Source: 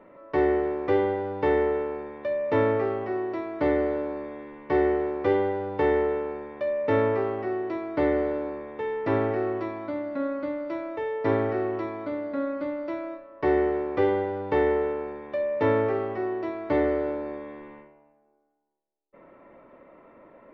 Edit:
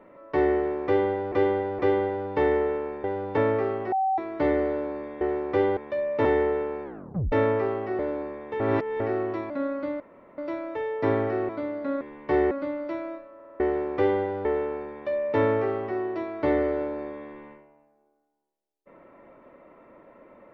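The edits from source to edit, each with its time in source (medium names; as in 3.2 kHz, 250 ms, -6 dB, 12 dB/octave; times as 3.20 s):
0.85–1.32 s: loop, 3 plays
2.10–2.58 s: swap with 5.48–5.81 s
3.13–3.39 s: bleep 767 Hz -21 dBFS
4.42–4.92 s: move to 12.50 s
6.40 s: tape stop 0.48 s
7.55–8.26 s: delete
8.87–9.27 s: reverse
9.77–10.10 s: delete
10.60 s: insert room tone 0.38 s
11.71–11.98 s: delete
13.34 s: stutter in place 0.05 s, 5 plays
14.44–14.72 s: delete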